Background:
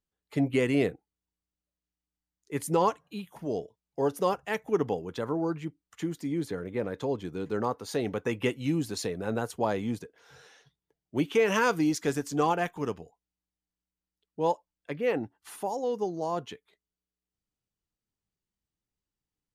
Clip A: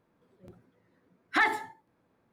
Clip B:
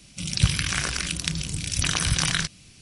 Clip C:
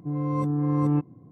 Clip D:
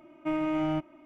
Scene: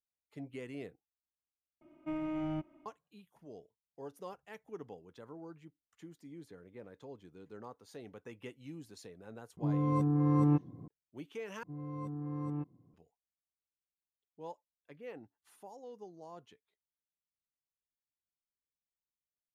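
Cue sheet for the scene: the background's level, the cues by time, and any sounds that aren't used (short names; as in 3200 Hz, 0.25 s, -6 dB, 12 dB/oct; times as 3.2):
background -19 dB
1.81 replace with D -12 dB + low shelf 350 Hz +8 dB
9.57 add C -4 dB + recorder AGC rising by 20 dB/s
11.63 replace with C -15 dB
not used: A, B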